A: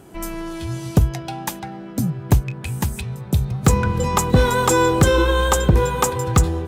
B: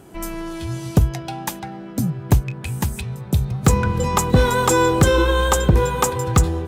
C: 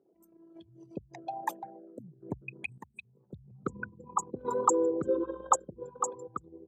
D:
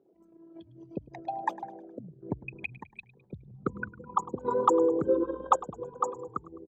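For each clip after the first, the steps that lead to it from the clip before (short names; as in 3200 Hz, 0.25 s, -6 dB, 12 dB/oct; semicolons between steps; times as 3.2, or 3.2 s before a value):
nothing audible
formant sharpening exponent 3; HPF 560 Hz 12 dB/oct; random-step tremolo 1.8 Hz, depth 80%
in parallel at -5 dB: overloaded stage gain 18 dB; on the sum: air absorption 190 m; frequency-shifting echo 0.104 s, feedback 49%, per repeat -38 Hz, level -19 dB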